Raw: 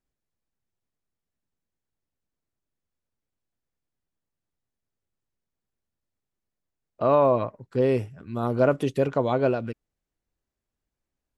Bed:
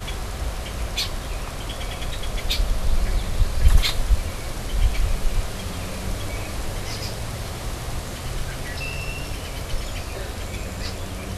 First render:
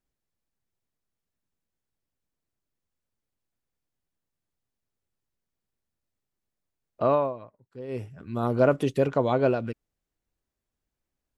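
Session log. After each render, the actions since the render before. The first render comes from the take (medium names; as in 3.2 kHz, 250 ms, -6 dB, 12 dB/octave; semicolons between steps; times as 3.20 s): 7.04–8.17 s: dip -17 dB, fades 0.30 s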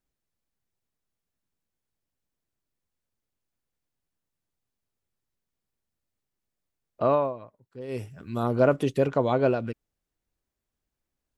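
7.81–8.43 s: treble shelf 3.5 kHz +9.5 dB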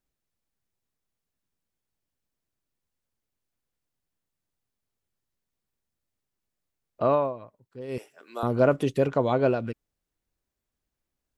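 7.98–8.43 s: high-pass 400 Hz 24 dB/octave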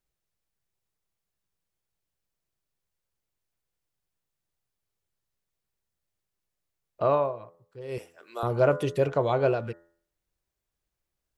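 peaking EQ 250 Hz -15 dB 0.25 oct; de-hum 84.6 Hz, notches 23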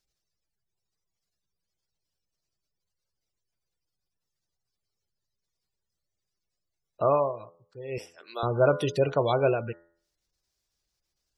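spectral gate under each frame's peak -30 dB strong; peaking EQ 5.1 kHz +14.5 dB 1.2 oct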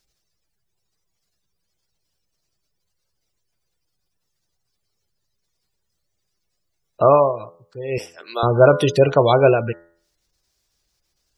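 trim +10 dB; peak limiter -1 dBFS, peak gain reduction 1.5 dB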